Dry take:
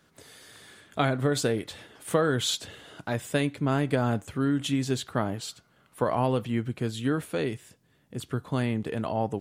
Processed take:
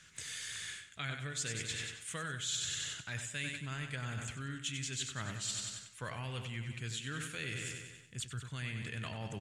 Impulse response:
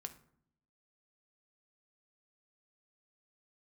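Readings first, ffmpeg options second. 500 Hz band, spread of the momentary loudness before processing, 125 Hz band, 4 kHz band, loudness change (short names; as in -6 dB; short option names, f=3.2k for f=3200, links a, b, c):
-22.0 dB, 14 LU, -10.5 dB, -4.5 dB, -11.0 dB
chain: -af "firequalizer=gain_entry='entry(140,0);entry(250,-11);entry(760,-15);entry(1600,2);entry(2500,6);entry(4500,1);entry(6900,10);entry(15000,-18)':delay=0.05:min_phase=1,aecho=1:1:95|190|285|380|475|570|665:0.355|0.206|0.119|0.0692|0.0402|0.0233|0.0135,areverse,acompressor=threshold=-41dB:ratio=6,areverse,equalizer=f=210:w=0.48:g=-4,volume=4.5dB"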